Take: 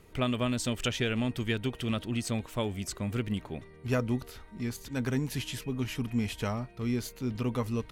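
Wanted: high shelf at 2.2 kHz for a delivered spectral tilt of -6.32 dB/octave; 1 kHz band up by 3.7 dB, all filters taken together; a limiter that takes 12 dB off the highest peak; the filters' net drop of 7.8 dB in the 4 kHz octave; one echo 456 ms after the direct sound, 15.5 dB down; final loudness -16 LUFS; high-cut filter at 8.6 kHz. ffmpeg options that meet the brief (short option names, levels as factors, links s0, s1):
-af "lowpass=8600,equalizer=f=1000:t=o:g=6,highshelf=f=2200:g=-3.5,equalizer=f=4000:t=o:g=-8,alimiter=level_in=1.68:limit=0.0631:level=0:latency=1,volume=0.596,aecho=1:1:456:0.168,volume=13.3"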